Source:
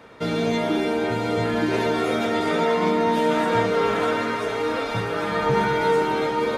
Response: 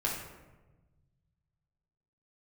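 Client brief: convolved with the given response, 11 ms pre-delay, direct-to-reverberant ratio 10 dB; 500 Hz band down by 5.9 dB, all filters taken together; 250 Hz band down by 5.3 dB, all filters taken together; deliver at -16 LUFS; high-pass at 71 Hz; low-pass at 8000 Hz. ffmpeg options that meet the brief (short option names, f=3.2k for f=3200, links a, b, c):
-filter_complex "[0:a]highpass=71,lowpass=8k,equalizer=f=250:t=o:g=-5,equalizer=f=500:t=o:g=-5.5,asplit=2[a][b];[1:a]atrim=start_sample=2205,adelay=11[c];[b][c]afir=irnorm=-1:irlink=0,volume=-16dB[d];[a][d]amix=inputs=2:normalize=0,volume=8.5dB"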